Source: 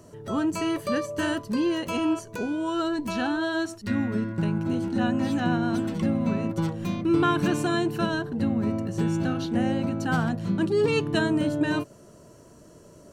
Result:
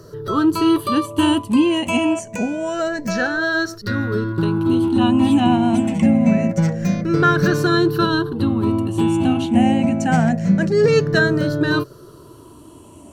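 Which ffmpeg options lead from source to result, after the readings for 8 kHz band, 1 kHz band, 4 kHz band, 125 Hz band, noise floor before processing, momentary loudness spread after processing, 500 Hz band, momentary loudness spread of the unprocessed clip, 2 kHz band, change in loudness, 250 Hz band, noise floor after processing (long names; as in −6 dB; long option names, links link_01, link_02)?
+7.5 dB, +8.5 dB, +8.5 dB, +8.5 dB, −51 dBFS, 7 LU, +8.0 dB, 5 LU, +9.5 dB, +8.5 dB, +8.5 dB, −43 dBFS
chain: -af "afftfilt=real='re*pow(10,14/40*sin(2*PI*(0.59*log(max(b,1)*sr/1024/100)/log(2)-(-0.26)*(pts-256)/sr)))':imag='im*pow(10,14/40*sin(2*PI*(0.59*log(max(b,1)*sr/1024/100)/log(2)-(-0.26)*(pts-256)/sr)))':win_size=1024:overlap=0.75,volume=6dB"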